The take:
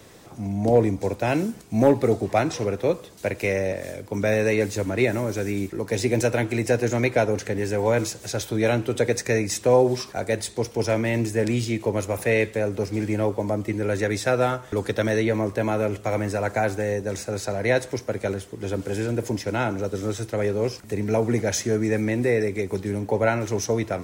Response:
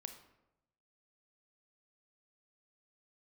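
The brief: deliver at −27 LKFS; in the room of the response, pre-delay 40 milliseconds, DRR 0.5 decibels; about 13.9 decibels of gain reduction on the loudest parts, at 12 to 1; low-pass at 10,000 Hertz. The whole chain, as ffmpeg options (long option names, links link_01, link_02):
-filter_complex "[0:a]lowpass=10000,acompressor=threshold=-26dB:ratio=12,asplit=2[link_01][link_02];[1:a]atrim=start_sample=2205,adelay=40[link_03];[link_02][link_03]afir=irnorm=-1:irlink=0,volume=4dB[link_04];[link_01][link_04]amix=inputs=2:normalize=0,volume=1.5dB"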